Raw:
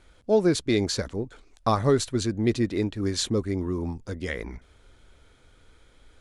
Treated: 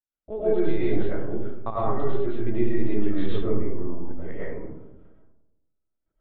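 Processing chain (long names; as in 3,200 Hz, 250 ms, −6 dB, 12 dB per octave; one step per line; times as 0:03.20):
high-pass filter 58 Hz 6 dB per octave
shaped tremolo saw up 0.59 Hz, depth 65%
low-pass filter 2,400 Hz 12 dB per octave, from 0:03.76 1,200 Hz
noise gate −58 dBFS, range −33 dB
linear-prediction vocoder at 8 kHz pitch kept
convolution reverb RT60 1.0 s, pre-delay 70 ms, DRR −8 dB
level −6 dB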